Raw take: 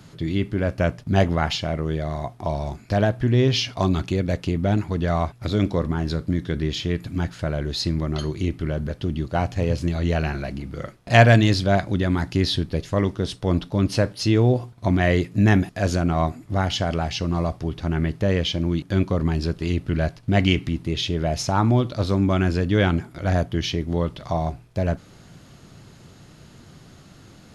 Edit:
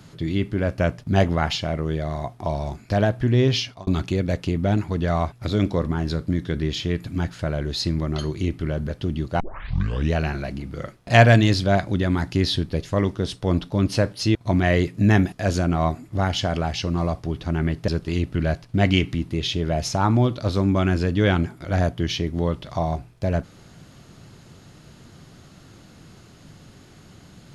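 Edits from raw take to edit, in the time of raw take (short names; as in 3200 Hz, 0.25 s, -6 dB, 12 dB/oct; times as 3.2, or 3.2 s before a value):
3.53–3.87 fade out
9.4 tape start 0.73 s
14.35–14.72 cut
18.25–19.42 cut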